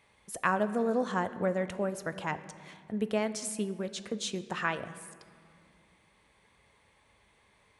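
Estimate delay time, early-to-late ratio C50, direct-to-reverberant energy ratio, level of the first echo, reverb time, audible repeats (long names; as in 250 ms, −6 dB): no echo audible, 13.5 dB, 11.5 dB, no echo audible, 2.1 s, no echo audible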